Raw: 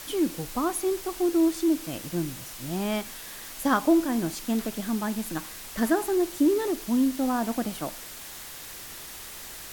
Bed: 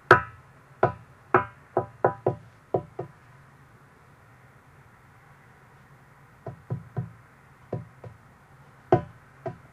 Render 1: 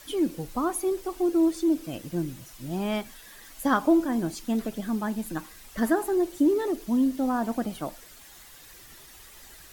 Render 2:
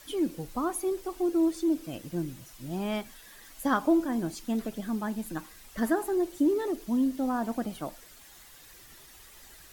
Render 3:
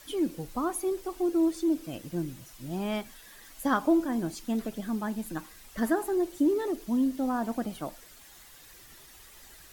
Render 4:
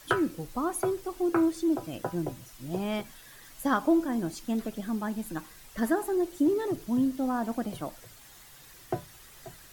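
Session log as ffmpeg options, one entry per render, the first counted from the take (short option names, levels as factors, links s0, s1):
-af "afftdn=nr=10:nf=-41"
-af "volume=0.708"
-af anull
-filter_complex "[1:a]volume=0.251[s0];[0:a][s0]amix=inputs=2:normalize=0"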